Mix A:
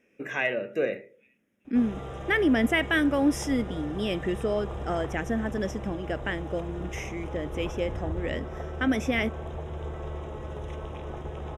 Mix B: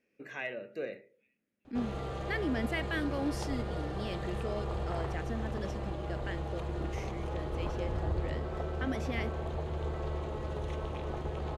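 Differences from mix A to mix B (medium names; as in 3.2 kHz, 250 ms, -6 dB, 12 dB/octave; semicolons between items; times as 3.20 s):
speech -11.0 dB; master: remove Butterworth band-stop 4.4 kHz, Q 3.2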